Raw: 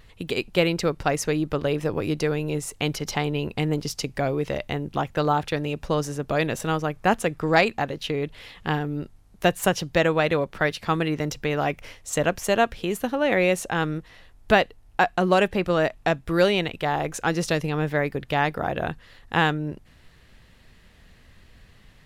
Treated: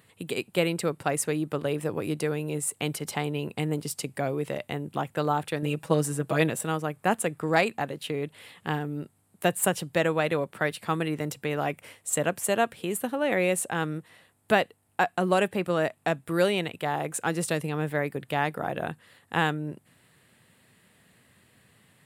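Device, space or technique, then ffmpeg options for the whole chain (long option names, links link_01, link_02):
budget condenser microphone: -filter_complex "[0:a]highpass=frequency=110:width=0.5412,highpass=frequency=110:width=1.3066,highshelf=frequency=7100:width_type=q:width=3:gain=6,asettb=1/sr,asplit=3[link_01][link_02][link_03];[link_01]atrim=end=5.624[link_04];[link_02]atrim=start=5.62:end=6.5,asetpts=PTS-STARTPTS,afade=type=in:duration=0.004:curve=qsin,afade=type=out:start_time=0.876:duration=0.004:curve=qsin,aecho=1:1:6.2:0.99,atrim=end_sample=38808[link_05];[link_03]atrim=start=6.496[link_06];[link_04][link_05]acrossfade=duration=0.004:curve1=hsin:curve2=qsin[link_07];[link_07][link_06]acrossfade=duration=0.004:curve1=qsin:curve2=hsin,volume=-4dB"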